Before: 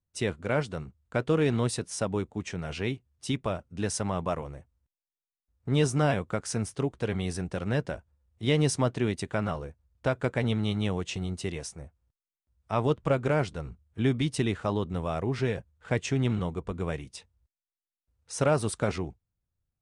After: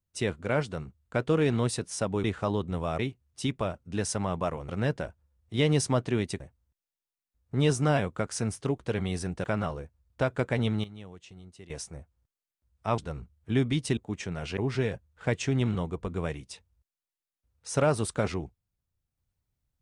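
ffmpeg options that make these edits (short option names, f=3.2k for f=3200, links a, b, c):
-filter_complex "[0:a]asplit=11[a][b][c][d][e][f][g][h][i][j][k];[a]atrim=end=2.242[l];[b]atrim=start=14.458:end=15.212[m];[c]atrim=start=2.838:end=4.542[n];[d]atrim=start=7.578:end=9.292[o];[e]atrim=start=4.538:end=7.582[p];[f]atrim=start=9.288:end=10.69,asetpts=PTS-STARTPTS,afade=t=out:st=1.272:d=0.13:c=log:silence=0.158489[q];[g]atrim=start=10.69:end=11.55,asetpts=PTS-STARTPTS,volume=-16dB[r];[h]atrim=start=11.55:end=12.832,asetpts=PTS-STARTPTS,afade=t=in:d=0.13:c=log:silence=0.158489[s];[i]atrim=start=13.468:end=14.462[t];[j]atrim=start=2.238:end=2.842[u];[k]atrim=start=15.208[v];[l][m]acrossfade=d=0.004:c1=hsin:c2=hsin[w];[w][n]acrossfade=d=0.004:c1=hsin:c2=hsin[x];[x][o]acrossfade=d=0.004:c1=hsin:c2=hsin[y];[y][p]acrossfade=d=0.004:c1=hsin:c2=hsin[z];[q][r][s]concat=n=3:v=0:a=1[aa];[z][aa]acrossfade=d=0.004:c1=hsin:c2=hsin[ab];[ab][t]acrossfade=d=0.004:c1=hsin:c2=hsin[ac];[ac][u]acrossfade=d=0.004:c1=hsin:c2=hsin[ad];[ad][v]acrossfade=d=0.004:c1=hsin:c2=hsin"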